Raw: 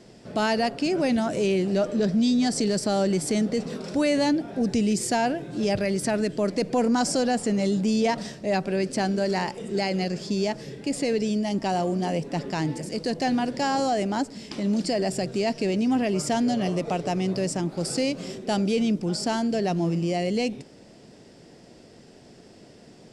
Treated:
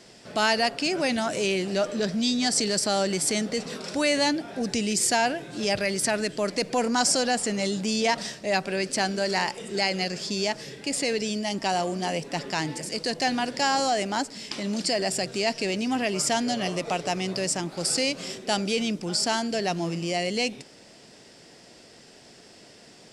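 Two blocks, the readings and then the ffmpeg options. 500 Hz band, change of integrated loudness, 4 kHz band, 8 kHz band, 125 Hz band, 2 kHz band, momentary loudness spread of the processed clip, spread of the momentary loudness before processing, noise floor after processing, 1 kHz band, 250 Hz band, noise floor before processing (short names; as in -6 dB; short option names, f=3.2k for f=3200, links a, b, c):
-2.0 dB, -0.5 dB, +6.0 dB, +6.5 dB, -5.5 dB, +5.0 dB, 7 LU, 6 LU, -51 dBFS, +1.0 dB, -5.0 dB, -50 dBFS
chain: -af "tiltshelf=f=700:g=-6.5"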